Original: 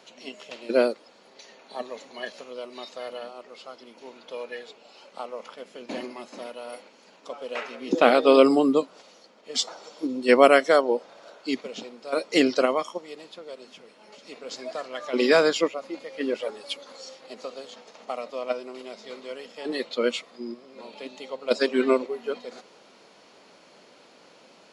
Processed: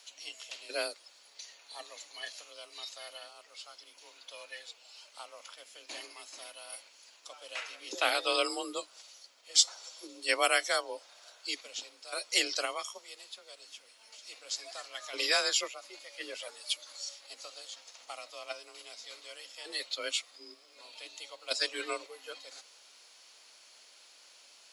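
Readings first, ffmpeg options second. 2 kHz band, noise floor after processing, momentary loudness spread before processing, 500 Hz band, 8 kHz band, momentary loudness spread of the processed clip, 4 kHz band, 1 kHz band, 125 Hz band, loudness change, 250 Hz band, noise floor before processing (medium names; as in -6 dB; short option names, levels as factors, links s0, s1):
-5.0 dB, -60 dBFS, 23 LU, -17.0 dB, +6.0 dB, 21 LU, +0.5 dB, -10.5 dB, under -30 dB, -9.5 dB, -23.0 dB, -55 dBFS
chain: -af "aderivative,afreqshift=35,volume=2"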